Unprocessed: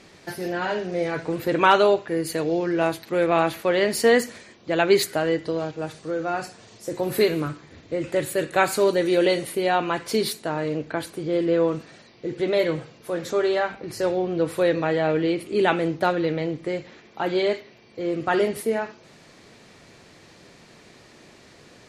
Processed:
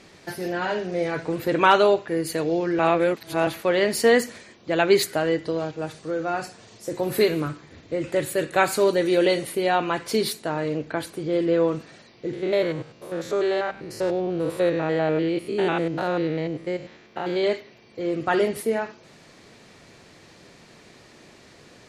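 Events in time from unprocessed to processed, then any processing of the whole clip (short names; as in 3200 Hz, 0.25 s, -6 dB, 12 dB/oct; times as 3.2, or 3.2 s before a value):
2.79–3.47 reverse
12.33–17.44 stepped spectrum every 0.1 s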